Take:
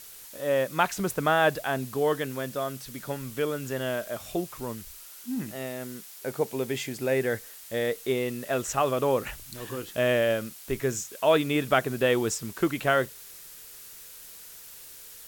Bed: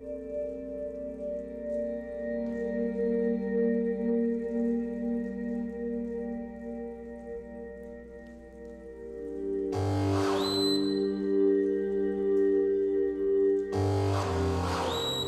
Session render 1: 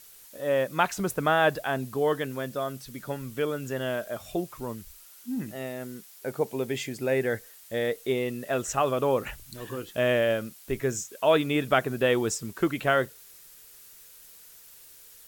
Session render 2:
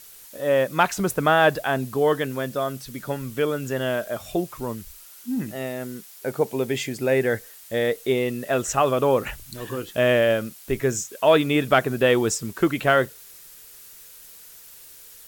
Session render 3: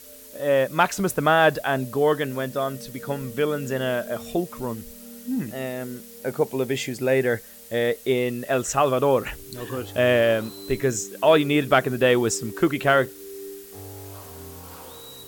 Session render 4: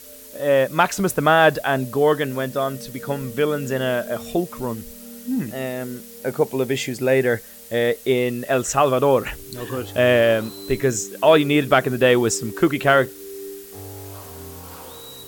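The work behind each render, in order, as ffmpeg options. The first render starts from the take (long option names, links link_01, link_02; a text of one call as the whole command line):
ffmpeg -i in.wav -af "afftdn=noise_reduction=6:noise_floor=-46" out.wav
ffmpeg -i in.wav -af "acontrast=29" out.wav
ffmpeg -i in.wav -i bed.wav -filter_complex "[1:a]volume=-13dB[link_01];[0:a][link_01]amix=inputs=2:normalize=0" out.wav
ffmpeg -i in.wav -af "volume=3dB,alimiter=limit=-3dB:level=0:latency=1" out.wav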